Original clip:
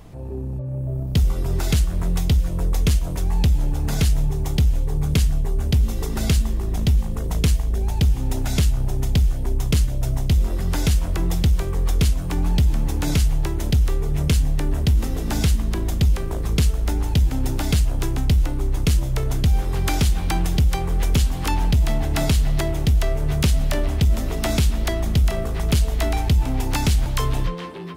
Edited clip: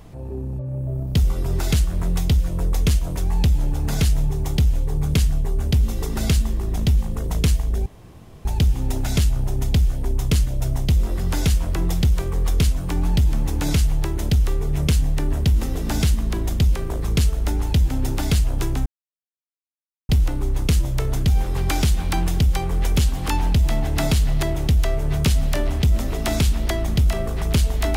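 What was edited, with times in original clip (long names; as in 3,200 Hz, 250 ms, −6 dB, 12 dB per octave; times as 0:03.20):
0:07.86: splice in room tone 0.59 s
0:18.27: splice in silence 1.23 s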